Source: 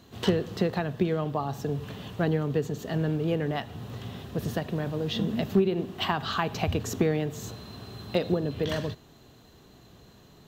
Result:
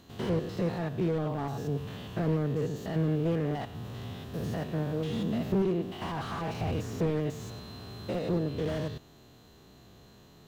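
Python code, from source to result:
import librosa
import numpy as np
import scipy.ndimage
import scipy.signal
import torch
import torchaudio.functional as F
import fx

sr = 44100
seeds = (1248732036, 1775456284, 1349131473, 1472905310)

y = fx.spec_steps(x, sr, hold_ms=100)
y = fx.slew_limit(y, sr, full_power_hz=21.0)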